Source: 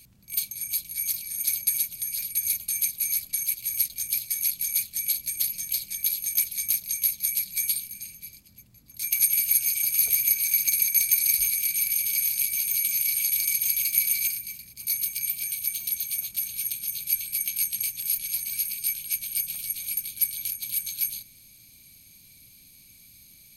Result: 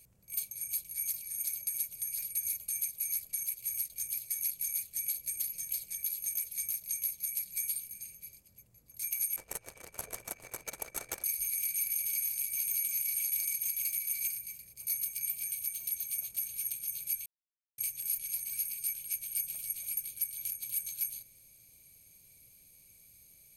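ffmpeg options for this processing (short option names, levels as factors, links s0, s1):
-filter_complex "[0:a]asettb=1/sr,asplit=3[s0][s1][s2];[s0]atrim=end=9.364[s3];[s1]atrim=start=9.36:end=11.24,asetpts=PTS-STARTPTS,afade=t=in:d=0.004:c=qsin,afade=t=out:st=1.876:d=0.004:c=qsin,adynamicsmooth=sensitivity=3:basefreq=920[s4];[s2]atrim=start=11.236[s5];[s3][s4]acrossfade=d=0.004:c1=hsin:c2=qsin[s6];[s6][s5]acrossfade=d=0.004:c1=qsin:c2=hsin,asplit=3[s7][s8][s9];[s7]atrim=end=17.26,asetpts=PTS-STARTPTS,afade=t=out:st=17.256:d=0.004:c=hsin[s10];[s8]atrim=start=17.26:end=17.78,asetpts=PTS-STARTPTS,volume=0[s11];[s9]atrim=start=17.78,asetpts=PTS-STARTPTS,afade=t=in:d=0.004:c=hsin[s12];[s10][s11][s12]concat=n=3:v=0:a=1,equalizer=f=250:t=o:w=1:g=-7,equalizer=f=500:t=o:w=1:g=9,equalizer=f=4000:t=o:w=1:g=-8,equalizer=f=8000:t=o:w=1:g=4,alimiter=limit=0.2:level=0:latency=1:release=193,volume=0.422"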